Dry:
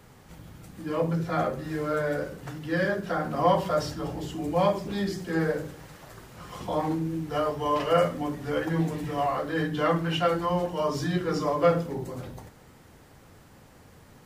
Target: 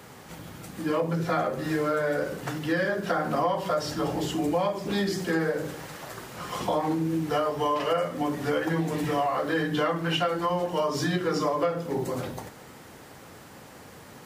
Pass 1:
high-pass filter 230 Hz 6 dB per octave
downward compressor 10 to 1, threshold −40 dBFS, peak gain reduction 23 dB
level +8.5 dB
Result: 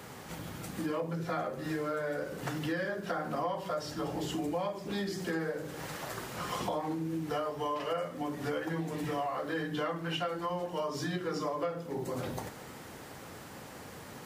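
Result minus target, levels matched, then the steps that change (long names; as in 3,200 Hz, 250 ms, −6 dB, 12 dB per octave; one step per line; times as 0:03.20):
downward compressor: peak gain reduction +8 dB
change: downward compressor 10 to 1, threshold −31 dBFS, peak gain reduction 15 dB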